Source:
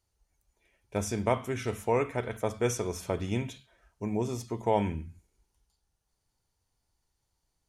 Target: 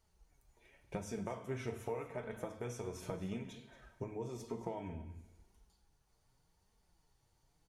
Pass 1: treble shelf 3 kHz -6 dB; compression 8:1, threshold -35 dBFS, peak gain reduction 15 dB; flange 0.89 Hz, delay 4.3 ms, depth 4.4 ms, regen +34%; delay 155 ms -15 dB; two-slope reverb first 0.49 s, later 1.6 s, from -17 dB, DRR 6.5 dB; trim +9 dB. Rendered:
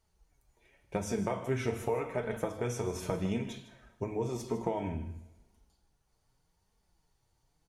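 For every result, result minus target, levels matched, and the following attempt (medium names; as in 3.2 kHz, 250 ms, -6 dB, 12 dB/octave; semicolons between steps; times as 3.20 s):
compression: peak gain reduction -9 dB; echo 74 ms early
treble shelf 3 kHz -6 dB; compression 8:1, threshold -45 dBFS, peak gain reduction 23.5 dB; flange 0.89 Hz, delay 4.3 ms, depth 4.4 ms, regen +34%; delay 155 ms -15 dB; two-slope reverb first 0.49 s, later 1.6 s, from -17 dB, DRR 6.5 dB; trim +9 dB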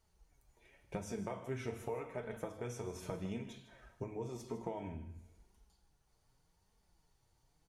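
echo 74 ms early
treble shelf 3 kHz -6 dB; compression 8:1, threshold -45 dBFS, peak gain reduction 23.5 dB; flange 0.89 Hz, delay 4.3 ms, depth 4.4 ms, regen +34%; delay 229 ms -15 dB; two-slope reverb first 0.49 s, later 1.6 s, from -17 dB, DRR 6.5 dB; trim +9 dB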